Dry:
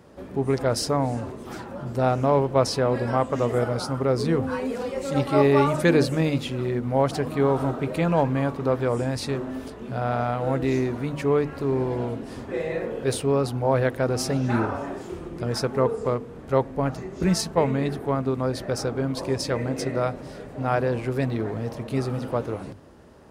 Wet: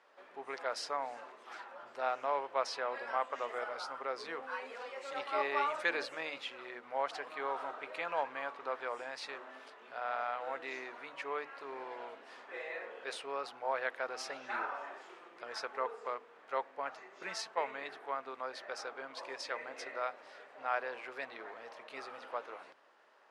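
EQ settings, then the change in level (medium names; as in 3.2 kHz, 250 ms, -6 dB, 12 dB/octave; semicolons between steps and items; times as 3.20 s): band-pass 650–2100 Hz; tilt EQ +4.5 dB/octave; -7.0 dB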